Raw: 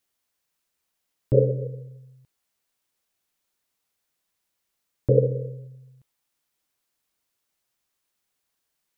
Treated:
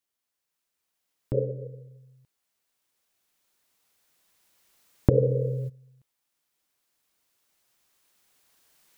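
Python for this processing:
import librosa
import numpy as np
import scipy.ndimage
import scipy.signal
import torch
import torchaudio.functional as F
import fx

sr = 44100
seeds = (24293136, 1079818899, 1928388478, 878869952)

y = fx.recorder_agc(x, sr, target_db=-14.0, rise_db_per_s=6.2, max_gain_db=30)
y = fx.low_shelf(y, sr, hz=140.0, db=-3.5)
y = fx.env_flatten(y, sr, amount_pct=50, at=(5.11, 5.68), fade=0.02)
y = y * 10.0 ** (-7.5 / 20.0)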